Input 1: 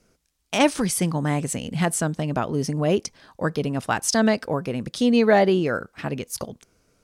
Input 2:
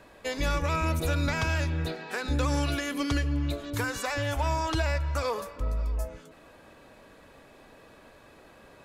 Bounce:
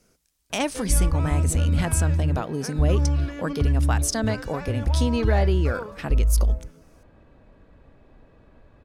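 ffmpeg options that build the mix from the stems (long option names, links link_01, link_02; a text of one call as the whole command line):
ffmpeg -i stem1.wav -i stem2.wav -filter_complex "[0:a]highshelf=frequency=7000:gain=7,acompressor=threshold=-25dB:ratio=2,volume=-1dB[link_01];[1:a]aemphasis=mode=reproduction:type=riaa,adelay=500,volume=-6.5dB[link_02];[link_01][link_02]amix=inputs=2:normalize=0" out.wav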